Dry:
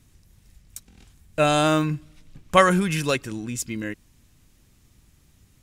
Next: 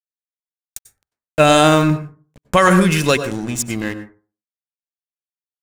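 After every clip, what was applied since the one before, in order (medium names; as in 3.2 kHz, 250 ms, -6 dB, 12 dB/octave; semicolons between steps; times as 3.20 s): crossover distortion -39.5 dBFS; on a send at -11 dB: reverberation RT60 0.35 s, pre-delay 88 ms; on the sum: loudness maximiser +10 dB; trim -1 dB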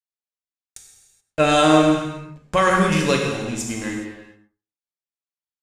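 low-pass 8.7 kHz 12 dB/octave; gated-style reverb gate 450 ms falling, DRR 0 dB; trim -6.5 dB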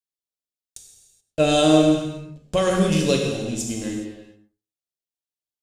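high-order bell 1.4 kHz -11 dB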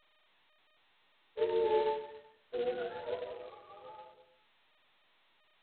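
spectrum inverted on a logarithmic axis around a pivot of 520 Hz; ladder band-pass 480 Hz, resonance 50%; trim -5 dB; G.726 16 kbps 8 kHz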